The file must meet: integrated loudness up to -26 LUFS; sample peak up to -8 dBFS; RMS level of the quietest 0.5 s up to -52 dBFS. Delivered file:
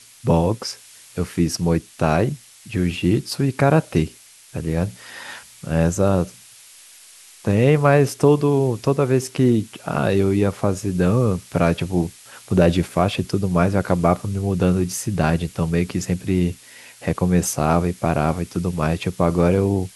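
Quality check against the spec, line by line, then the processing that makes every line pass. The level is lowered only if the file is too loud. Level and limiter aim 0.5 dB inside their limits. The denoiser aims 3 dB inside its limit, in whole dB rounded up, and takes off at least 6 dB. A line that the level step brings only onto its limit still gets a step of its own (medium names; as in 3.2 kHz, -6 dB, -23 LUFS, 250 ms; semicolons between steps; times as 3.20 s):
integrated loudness -20.5 LUFS: fail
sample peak -2.5 dBFS: fail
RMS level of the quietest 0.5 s -46 dBFS: fail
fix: noise reduction 6 dB, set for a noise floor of -46 dBFS; trim -6 dB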